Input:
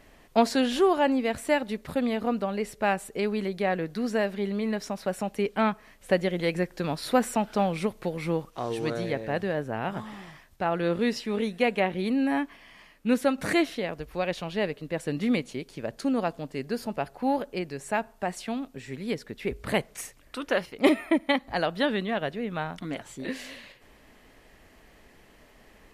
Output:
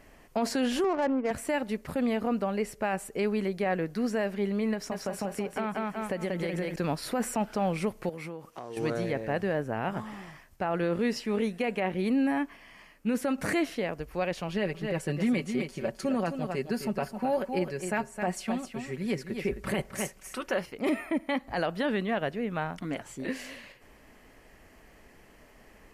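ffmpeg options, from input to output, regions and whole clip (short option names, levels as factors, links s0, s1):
-filter_complex "[0:a]asettb=1/sr,asplit=3[s0][s1][s2];[s0]atrim=end=0.844[s3];[s1]atrim=start=0.84:end=1.31,asetpts=PTS-STARTPTS,afade=t=in:d=0.004:c=qsin,afade=t=out:st=0.466:d=0.004:c=qsin,highpass=260,lowpass=2500,adynamicsmooth=sensitivity=2:basefreq=540[s4];[s2]atrim=start=1.306[s5];[s3][s4]acrossfade=d=0.004:c1=hsin:c2=qsin[s6];[s6][s5]acrossfade=d=0.004:c1=qsin:c2=hsin,asettb=1/sr,asplit=3[s7][s8][s9];[s7]atrim=end=4.734[s10];[s8]atrim=start=4.73:end=6.76,asetpts=PTS-STARTPTS,afade=t=in:d=0.004:c=qsin,afade=t=out:st=2.026:d=0.004:c=qsin,aecho=1:1:186|372|558|744|930:0.668|0.274|0.112|0.0461|0.0189,atrim=end_sample=89523,acompressor=threshold=0.0447:ratio=6:attack=3.2:release=140:knee=1:detection=peak[s11];[s9]atrim=start=6.756[s12];[s10][s11]acrossfade=d=0.004:c1=hsin:c2=qsin[s13];[s13][s12]acrossfade=d=0.004:c1=qsin:c2=hsin,asettb=1/sr,asplit=3[s14][s15][s16];[s14]atrim=end=8.094[s17];[s15]atrim=start=8.09:end=8.77,asetpts=PTS-STARTPTS,afade=t=in:d=0.004:c=qsin,afade=t=out:st=0.676:d=0.004:c=qsin,highpass=f=170:p=1,acompressor=threshold=0.0178:ratio=8:attack=3.2:release=140:knee=1:detection=peak[s18];[s16]atrim=start=8.766[s19];[s17][s18]acrossfade=d=0.004:c1=hsin:c2=qsin[s20];[s20][s19]acrossfade=d=0.004:c1=qsin:c2=hsin,asettb=1/sr,asplit=3[s21][s22][s23];[s21]atrim=end=14.484[s24];[s22]atrim=start=14.48:end=20.59,asetpts=PTS-STARTPTS,afade=t=in:d=0.004:c=qsin,afade=t=out:st=6.106:d=0.004:c=qsin,aecho=1:1:5.3:0.58,atrim=end_sample=269451,aecho=1:1:262:0.376,atrim=end_sample=269451[s25];[s23]atrim=start=20.586[s26];[s24][s25]acrossfade=d=0.004:c1=hsin:c2=qsin[s27];[s27][s26]acrossfade=d=0.004:c1=qsin:c2=hsin,equalizer=f=3700:t=o:w=0.39:g=-7.5,alimiter=limit=0.106:level=0:latency=1:release=13"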